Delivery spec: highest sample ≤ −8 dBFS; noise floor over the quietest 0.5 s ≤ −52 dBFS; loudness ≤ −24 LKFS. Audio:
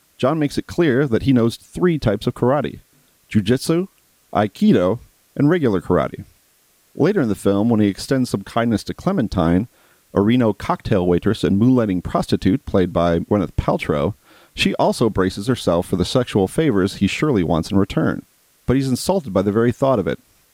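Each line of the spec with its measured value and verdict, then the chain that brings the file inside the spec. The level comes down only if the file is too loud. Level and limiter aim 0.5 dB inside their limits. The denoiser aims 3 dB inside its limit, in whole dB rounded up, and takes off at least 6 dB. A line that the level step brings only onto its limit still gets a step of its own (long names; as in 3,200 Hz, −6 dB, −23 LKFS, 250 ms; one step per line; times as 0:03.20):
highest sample −4.0 dBFS: out of spec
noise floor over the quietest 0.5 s −58 dBFS: in spec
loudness −19.0 LKFS: out of spec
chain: level −5.5 dB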